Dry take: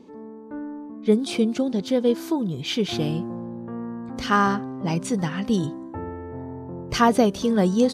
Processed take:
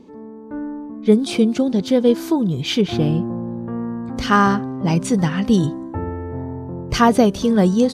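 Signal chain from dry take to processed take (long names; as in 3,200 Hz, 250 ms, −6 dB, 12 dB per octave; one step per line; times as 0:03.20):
low-shelf EQ 130 Hz +7.5 dB
automatic gain control gain up to 3.5 dB
0:02.81–0:03.48: high-shelf EQ 3,000 Hz −10 dB
level +1.5 dB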